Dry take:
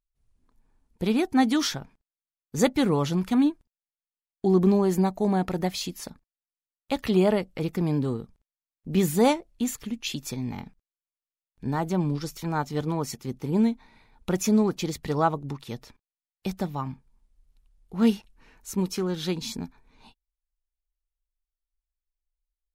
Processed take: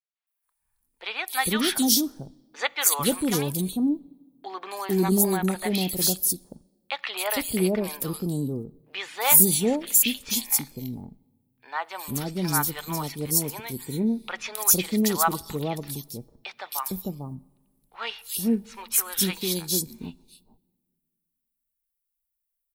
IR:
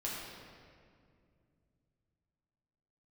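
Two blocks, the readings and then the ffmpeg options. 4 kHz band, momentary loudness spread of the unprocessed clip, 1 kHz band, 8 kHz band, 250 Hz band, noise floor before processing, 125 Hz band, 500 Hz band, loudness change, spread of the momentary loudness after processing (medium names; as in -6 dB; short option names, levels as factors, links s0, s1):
+6.5 dB, 15 LU, +0.5 dB, +14.0 dB, -2.5 dB, under -85 dBFS, -2.5 dB, -2.5 dB, +2.5 dB, 16 LU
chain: -filter_complex "[0:a]aexciter=amount=4.8:drive=3.7:freq=8800,tiltshelf=f=1200:g=-6.5,agate=range=0.355:threshold=0.00158:ratio=16:detection=peak,acrossover=split=620|3800[s0][s1][s2];[s2]adelay=270[s3];[s0]adelay=450[s4];[s4][s1][s3]amix=inputs=3:normalize=0,asplit=2[s5][s6];[1:a]atrim=start_sample=2205,asetrate=79380,aresample=44100[s7];[s6][s7]afir=irnorm=-1:irlink=0,volume=0.0891[s8];[s5][s8]amix=inputs=2:normalize=0,volume=1.5"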